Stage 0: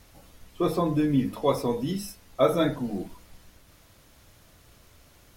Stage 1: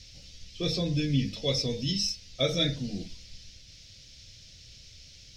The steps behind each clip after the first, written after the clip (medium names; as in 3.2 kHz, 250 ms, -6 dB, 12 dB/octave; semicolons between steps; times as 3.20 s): FFT filter 130 Hz 0 dB, 360 Hz -13 dB, 520 Hz -8 dB, 1 kHz -26 dB, 2.3 kHz +1 dB, 5.4 kHz +13 dB, 11 kHz -20 dB; trim +3 dB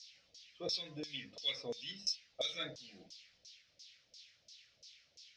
Chebyshev shaper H 3 -23 dB, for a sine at -12 dBFS; LFO band-pass saw down 2.9 Hz 540–6000 Hz; trim +1 dB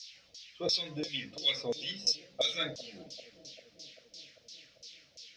bucket-brigade echo 393 ms, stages 2048, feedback 69%, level -16.5 dB; trim +7.5 dB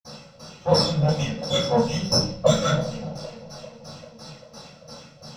comb filter that takes the minimum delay 1.5 ms; reverberation RT60 0.40 s, pre-delay 47 ms; trim +6.5 dB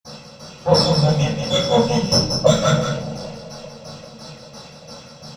delay 183 ms -6.5 dB; trim +4 dB